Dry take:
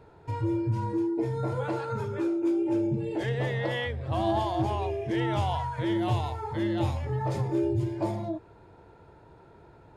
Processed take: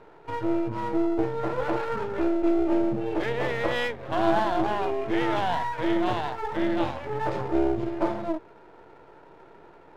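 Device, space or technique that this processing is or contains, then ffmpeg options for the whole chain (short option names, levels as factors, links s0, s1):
crystal radio: -af "highpass=260,lowpass=3000,aeval=exprs='if(lt(val(0),0),0.251*val(0),val(0))':c=same,volume=2.51"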